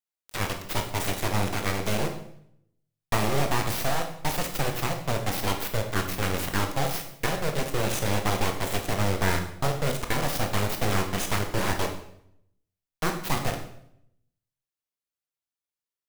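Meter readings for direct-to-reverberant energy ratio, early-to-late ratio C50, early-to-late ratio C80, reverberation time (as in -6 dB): 4.0 dB, 8.0 dB, 11.0 dB, 0.70 s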